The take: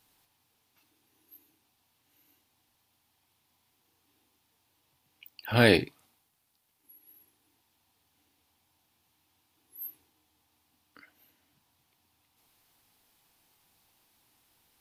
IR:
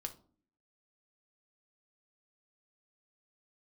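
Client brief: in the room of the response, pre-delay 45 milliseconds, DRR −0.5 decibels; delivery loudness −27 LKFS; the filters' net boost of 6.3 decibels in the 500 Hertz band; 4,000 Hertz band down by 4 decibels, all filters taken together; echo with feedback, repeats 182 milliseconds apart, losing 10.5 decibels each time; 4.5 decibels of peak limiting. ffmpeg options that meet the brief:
-filter_complex "[0:a]equalizer=frequency=500:width_type=o:gain=7.5,equalizer=frequency=4000:width_type=o:gain=-5,alimiter=limit=-8dB:level=0:latency=1,aecho=1:1:182|364|546:0.299|0.0896|0.0269,asplit=2[link_01][link_02];[1:a]atrim=start_sample=2205,adelay=45[link_03];[link_02][link_03]afir=irnorm=-1:irlink=0,volume=2.5dB[link_04];[link_01][link_04]amix=inputs=2:normalize=0,volume=-4dB"

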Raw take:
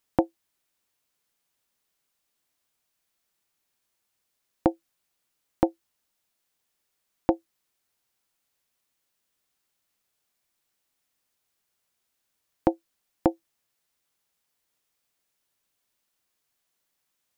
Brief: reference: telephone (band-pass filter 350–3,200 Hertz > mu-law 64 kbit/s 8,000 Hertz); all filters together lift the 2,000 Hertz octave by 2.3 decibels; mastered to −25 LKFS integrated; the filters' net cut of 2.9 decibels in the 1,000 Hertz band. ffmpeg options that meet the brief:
ffmpeg -i in.wav -af "highpass=350,lowpass=3200,equalizer=frequency=1000:width_type=o:gain=-5,equalizer=frequency=2000:width_type=o:gain=5.5,volume=8dB" -ar 8000 -c:a pcm_mulaw out.wav

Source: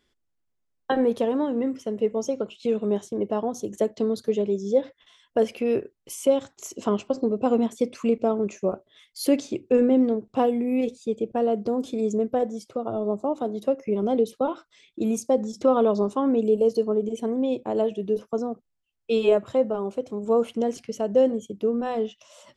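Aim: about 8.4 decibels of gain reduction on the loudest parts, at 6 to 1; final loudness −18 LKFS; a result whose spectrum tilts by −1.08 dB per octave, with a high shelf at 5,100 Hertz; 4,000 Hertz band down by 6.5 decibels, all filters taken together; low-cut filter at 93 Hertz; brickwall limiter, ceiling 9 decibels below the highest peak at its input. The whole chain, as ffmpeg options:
ffmpeg -i in.wav -af "highpass=93,equalizer=frequency=4000:width_type=o:gain=-5,highshelf=frequency=5100:gain=-9,acompressor=threshold=-24dB:ratio=6,volume=14dB,alimiter=limit=-8dB:level=0:latency=1" out.wav

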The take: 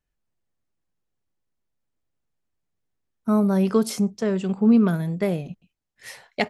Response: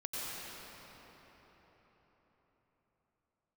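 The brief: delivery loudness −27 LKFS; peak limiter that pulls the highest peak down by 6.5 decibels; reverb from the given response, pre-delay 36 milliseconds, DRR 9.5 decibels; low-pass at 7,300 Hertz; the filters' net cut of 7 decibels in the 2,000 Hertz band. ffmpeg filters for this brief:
-filter_complex "[0:a]lowpass=7300,equalizer=frequency=2000:width_type=o:gain=-8.5,alimiter=limit=-15.5dB:level=0:latency=1,asplit=2[link_01][link_02];[1:a]atrim=start_sample=2205,adelay=36[link_03];[link_02][link_03]afir=irnorm=-1:irlink=0,volume=-13dB[link_04];[link_01][link_04]amix=inputs=2:normalize=0,volume=-2dB"

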